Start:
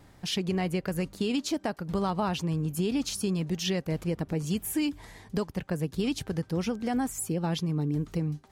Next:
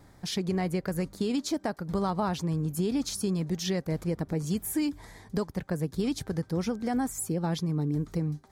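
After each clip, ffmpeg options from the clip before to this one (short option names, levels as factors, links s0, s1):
-af "equalizer=f=2800:t=o:w=0.37:g=-10"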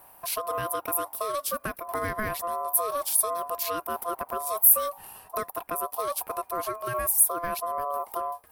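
-af "aeval=exprs='val(0)*sin(2*PI*860*n/s)':c=same,aexciter=amount=12.4:drive=6.8:freq=9700,volume=1.12"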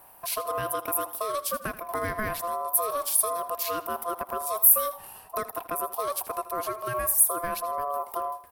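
-af "aecho=1:1:80|160|240:0.168|0.0571|0.0194"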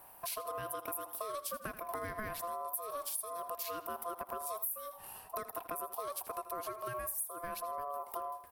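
-af "acompressor=threshold=0.0224:ratio=6,volume=0.668"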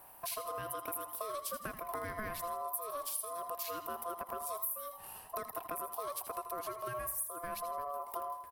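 -af "aecho=1:1:81|162|243|324:0.251|0.111|0.0486|0.0214"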